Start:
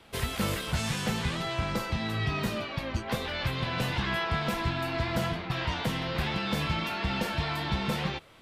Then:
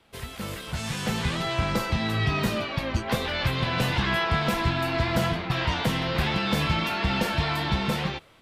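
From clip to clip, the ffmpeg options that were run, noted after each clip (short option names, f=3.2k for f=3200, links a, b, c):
-af "dynaudnorm=f=400:g=5:m=11dB,volume=-6dB"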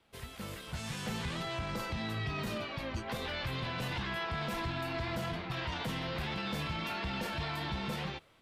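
-af "alimiter=limit=-20dB:level=0:latency=1:release=18,volume=-8.5dB"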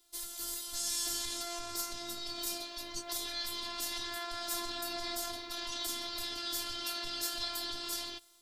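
-af "afftfilt=real='hypot(re,im)*cos(PI*b)':imag='0':win_size=512:overlap=0.75,aexciter=amount=7.3:drive=6.7:freq=3.8k,volume=-2.5dB"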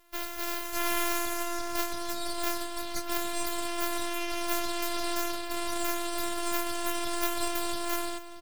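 -af "aeval=exprs='abs(val(0))':c=same,aecho=1:1:627|1254|1881|2508:0.133|0.068|0.0347|0.0177,volume=7dB"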